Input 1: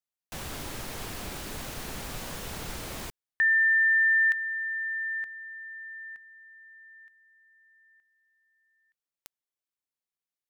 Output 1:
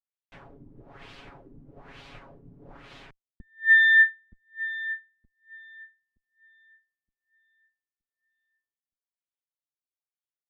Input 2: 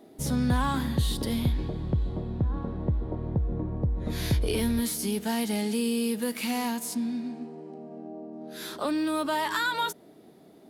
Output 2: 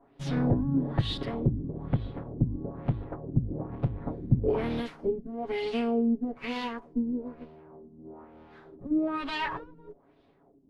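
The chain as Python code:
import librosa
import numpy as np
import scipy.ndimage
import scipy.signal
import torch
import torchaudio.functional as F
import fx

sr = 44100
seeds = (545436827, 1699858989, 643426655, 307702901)

y = fx.lower_of_two(x, sr, delay_ms=7.2)
y = fx.filter_lfo_lowpass(y, sr, shape='sine', hz=1.1, low_hz=240.0, high_hz=3500.0, q=1.8)
y = fx.upward_expand(y, sr, threshold_db=-43.0, expansion=1.5)
y = F.gain(torch.from_numpy(y), 3.0).numpy()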